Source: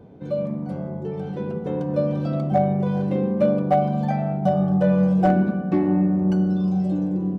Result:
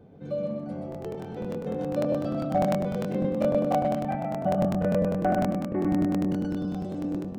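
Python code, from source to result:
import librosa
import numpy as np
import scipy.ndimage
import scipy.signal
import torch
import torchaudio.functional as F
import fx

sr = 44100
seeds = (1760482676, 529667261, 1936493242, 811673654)

y = fx.hum_notches(x, sr, base_hz=60, count=10)
y = fx.lowpass(y, sr, hz=fx.line((3.87, 2700.0), (6.08, 2000.0)), slope=24, at=(3.87, 6.08), fade=0.02)
y = fx.notch(y, sr, hz=970.0, q=9.1)
y = fx.echo_feedback(y, sr, ms=126, feedback_pct=36, wet_db=-3.5)
y = fx.buffer_crackle(y, sr, first_s=0.9, period_s=0.1, block=1024, kind='repeat')
y = y * 10.0 ** (-5.0 / 20.0)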